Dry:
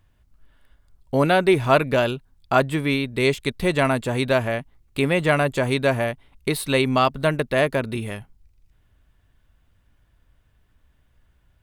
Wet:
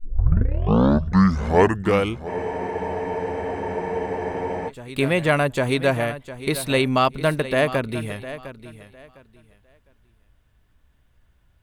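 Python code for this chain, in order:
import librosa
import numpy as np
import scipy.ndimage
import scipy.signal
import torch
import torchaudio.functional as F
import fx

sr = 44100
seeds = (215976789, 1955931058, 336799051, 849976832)

y = fx.tape_start_head(x, sr, length_s=2.4)
y = fx.echo_feedback(y, sr, ms=706, feedback_pct=23, wet_db=-14)
y = fx.spec_freeze(y, sr, seeds[0], at_s=2.29, hold_s=2.38)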